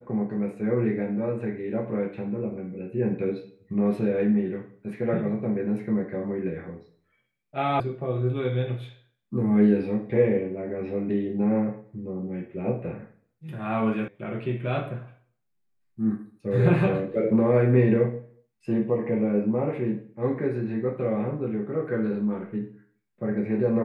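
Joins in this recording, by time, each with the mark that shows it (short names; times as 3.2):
7.8 sound cut off
14.08 sound cut off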